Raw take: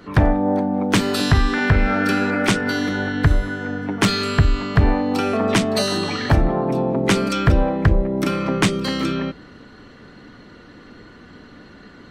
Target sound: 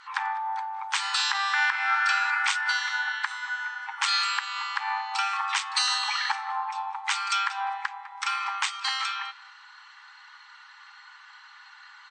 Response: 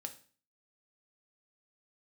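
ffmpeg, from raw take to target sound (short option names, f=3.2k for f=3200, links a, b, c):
-filter_complex "[0:a]afftfilt=real='re*between(b*sr/4096,780,8700)':imag='im*between(b*sr/4096,780,8700)':win_size=4096:overlap=0.75,alimiter=limit=-12dB:level=0:latency=1:release=129,asplit=2[a][b];[b]aecho=0:1:203|406:0.0794|0.0151[c];[a][c]amix=inputs=2:normalize=0"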